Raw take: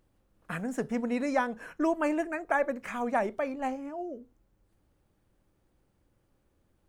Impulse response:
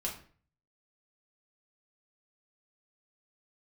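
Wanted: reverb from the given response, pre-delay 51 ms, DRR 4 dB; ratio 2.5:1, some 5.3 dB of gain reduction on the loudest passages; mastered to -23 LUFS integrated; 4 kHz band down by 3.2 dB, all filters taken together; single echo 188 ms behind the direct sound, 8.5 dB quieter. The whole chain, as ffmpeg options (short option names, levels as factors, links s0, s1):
-filter_complex "[0:a]equalizer=f=4000:t=o:g=-4.5,acompressor=threshold=0.0316:ratio=2.5,aecho=1:1:188:0.376,asplit=2[s0][s1];[1:a]atrim=start_sample=2205,adelay=51[s2];[s1][s2]afir=irnorm=-1:irlink=0,volume=0.501[s3];[s0][s3]amix=inputs=2:normalize=0,volume=3.16"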